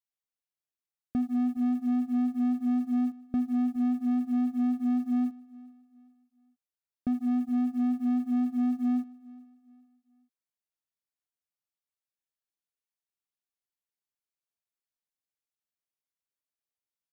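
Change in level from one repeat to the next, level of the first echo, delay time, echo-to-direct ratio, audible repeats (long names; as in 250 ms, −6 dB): −9.0 dB, −22.0 dB, 418 ms, −21.5 dB, 2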